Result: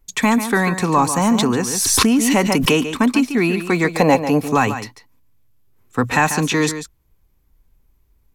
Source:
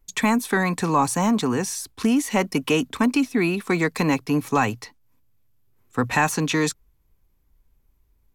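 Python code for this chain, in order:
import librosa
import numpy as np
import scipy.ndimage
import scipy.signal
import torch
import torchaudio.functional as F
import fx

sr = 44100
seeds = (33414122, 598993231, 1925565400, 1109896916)

y = fx.band_shelf(x, sr, hz=630.0, db=11.0, octaves=1.0, at=(3.88, 4.5))
y = y + 10.0 ** (-10.5 / 20.0) * np.pad(y, (int(143 * sr / 1000.0), 0))[:len(y)]
y = fx.pre_swell(y, sr, db_per_s=27.0, at=(1.31, 2.87))
y = F.gain(torch.from_numpy(y), 4.0).numpy()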